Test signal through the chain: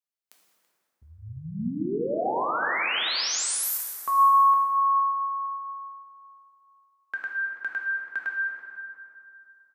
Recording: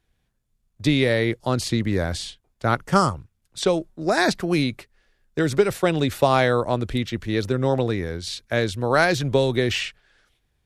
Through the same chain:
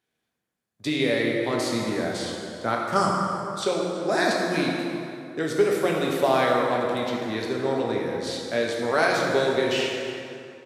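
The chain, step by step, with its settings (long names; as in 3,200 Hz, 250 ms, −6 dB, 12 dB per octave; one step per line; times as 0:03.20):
high-pass filter 220 Hz 12 dB per octave
slap from a distant wall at 57 metres, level −14 dB
dense smooth reverb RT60 2.7 s, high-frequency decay 0.6×, DRR −2 dB
level −5.5 dB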